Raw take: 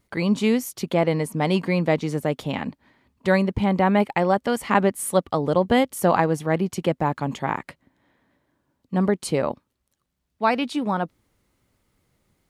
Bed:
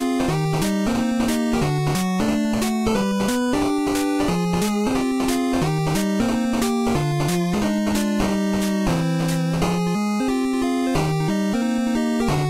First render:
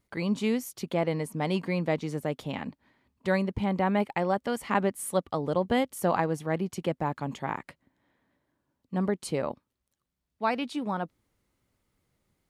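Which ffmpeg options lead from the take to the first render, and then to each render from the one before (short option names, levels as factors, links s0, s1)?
-af "volume=0.447"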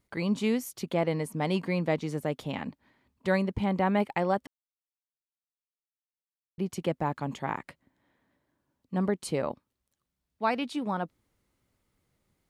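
-filter_complex "[0:a]asplit=3[s0][s1][s2];[s0]atrim=end=4.47,asetpts=PTS-STARTPTS,afade=t=out:st=4.466:d=0.004:c=hsin[s3];[s1]atrim=start=4.47:end=6.58,asetpts=PTS-STARTPTS,volume=0[s4];[s2]atrim=start=6.58,asetpts=PTS-STARTPTS,afade=t=in:d=0.004:c=hsin[s5];[s3][s4][s5]concat=n=3:v=0:a=1"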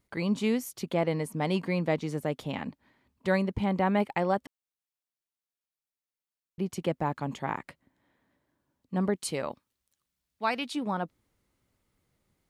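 -filter_complex "[0:a]asettb=1/sr,asplit=3[s0][s1][s2];[s0]atrim=end=9.154[s3];[s1]atrim=start=9.15:end=10.75,asetpts=PTS-STARTPTS,afade=t=in:d=0.004:c=qsin,afade=t=out:st=1.596:d=0.004:c=qsin,tiltshelf=f=1300:g=-4.5[s4];[s2]atrim=start=10.746[s5];[s3][s4]acrossfade=d=0.004:c1=hsin:c2=qsin[s6];[s6][s5]acrossfade=d=0.004:c1=qsin:c2=hsin"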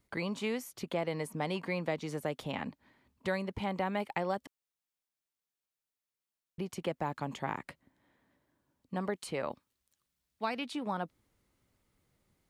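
-filter_complex "[0:a]acrossover=split=480|2800[s0][s1][s2];[s0]acompressor=threshold=0.0126:ratio=4[s3];[s1]acompressor=threshold=0.0224:ratio=4[s4];[s2]acompressor=threshold=0.00447:ratio=4[s5];[s3][s4][s5]amix=inputs=3:normalize=0"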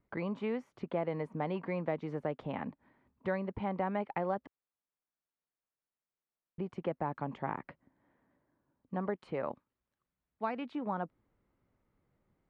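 -af "lowpass=1600,equalizer=f=75:t=o:w=0.83:g=-3.5"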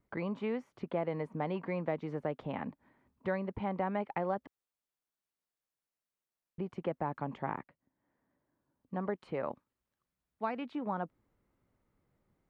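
-filter_complex "[0:a]asplit=2[s0][s1];[s0]atrim=end=7.64,asetpts=PTS-STARTPTS,afade=t=out:st=7.636:d=0.004:c=hsin:silence=0.158489[s2];[s1]atrim=start=7.64,asetpts=PTS-STARTPTS,afade=t=in:d=1.5:silence=0.158489[s3];[s2][s3]concat=n=2:v=0:a=1"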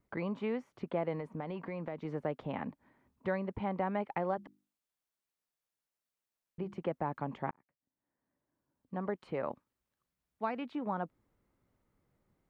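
-filter_complex "[0:a]asettb=1/sr,asplit=3[s0][s1][s2];[s0]atrim=end=1.154[s3];[s1]atrim=start=1.15:end=2.05,asetpts=PTS-STARTPTS,afade=t=in:d=0.004:c=qsin,afade=t=out:st=0.896:d=0.004:c=qsin,acompressor=threshold=0.0178:ratio=6:attack=3.2:release=140:knee=1:detection=peak[s4];[s2]atrim=start=2.046[s5];[s3][s4]acrossfade=d=0.004:c1=hsin:c2=qsin[s6];[s6][s5]acrossfade=d=0.004:c1=qsin:c2=hsin,asplit=3[s7][s8][s9];[s7]afade=t=out:st=4.29:d=0.02[s10];[s8]bandreject=f=50:t=h:w=6,bandreject=f=100:t=h:w=6,bandreject=f=150:t=h:w=6,bandreject=f=200:t=h:w=6,bandreject=f=250:t=h:w=6,bandreject=f=300:t=h:w=6,bandreject=f=350:t=h:w=6,afade=t=in:st=4.29:d=0.02,afade=t=out:st=6.78:d=0.02[s11];[s9]afade=t=in:st=6.78:d=0.02[s12];[s10][s11][s12]amix=inputs=3:normalize=0,asplit=2[s13][s14];[s13]atrim=end=7.51,asetpts=PTS-STARTPTS,afade=t=out:st=7.506:d=0.004:c=hsin[s15];[s14]atrim=start=7.51,asetpts=PTS-STARTPTS,afade=t=in:d=1.71[s16];[s15][s16]concat=n=2:v=0:a=1"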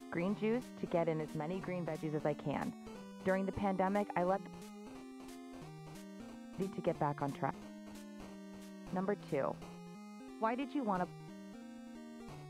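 -filter_complex "[1:a]volume=0.0316[s0];[0:a][s0]amix=inputs=2:normalize=0"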